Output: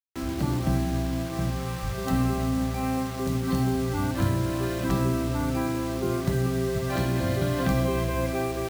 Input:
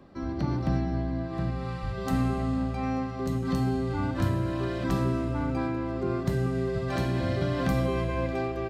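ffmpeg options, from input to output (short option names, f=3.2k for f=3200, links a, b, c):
-af "acontrast=37,acrusher=bits=5:mix=0:aa=0.000001,volume=-3.5dB"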